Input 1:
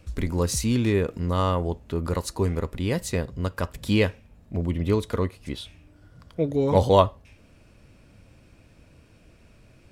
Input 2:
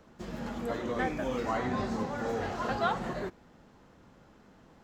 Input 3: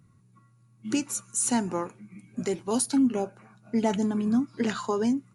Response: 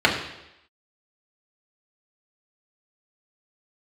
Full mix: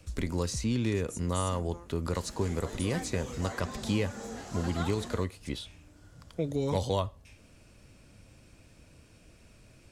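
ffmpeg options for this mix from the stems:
-filter_complex "[0:a]acrossover=split=150|2100|7100[link_01][link_02][link_03][link_04];[link_01]acompressor=threshold=-30dB:ratio=4[link_05];[link_02]acompressor=threshold=-26dB:ratio=4[link_06];[link_03]acompressor=threshold=-42dB:ratio=4[link_07];[link_04]acompressor=threshold=-60dB:ratio=4[link_08];[link_05][link_06][link_07][link_08]amix=inputs=4:normalize=0,volume=-3dB[link_09];[1:a]equalizer=frequency=9400:width=0.67:gain=13.5,adelay=1950,volume=-10.5dB[link_10];[2:a]acompressor=threshold=-26dB:ratio=6,volume=-18.5dB[link_11];[link_09][link_10][link_11]amix=inputs=3:normalize=0,equalizer=frequency=7900:width_type=o:width=1.7:gain=8"

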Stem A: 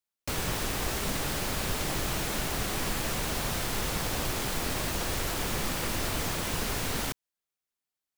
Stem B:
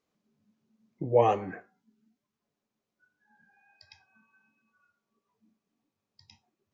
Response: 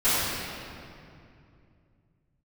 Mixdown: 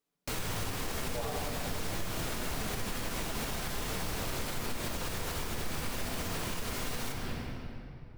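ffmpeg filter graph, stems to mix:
-filter_complex "[0:a]flanger=delay=7.9:depth=5.8:regen=74:speed=0.44:shape=sinusoidal,volume=2.5dB,asplit=2[link_01][link_02];[link_02]volume=-18dB[link_03];[1:a]aecho=1:1:7:0.86,volume=-10.5dB,asplit=2[link_04][link_05];[link_05]volume=-18dB[link_06];[2:a]atrim=start_sample=2205[link_07];[link_03][link_06]amix=inputs=2:normalize=0[link_08];[link_08][link_07]afir=irnorm=-1:irlink=0[link_09];[link_01][link_04][link_09]amix=inputs=3:normalize=0,alimiter=level_in=1dB:limit=-24dB:level=0:latency=1:release=208,volume=-1dB"

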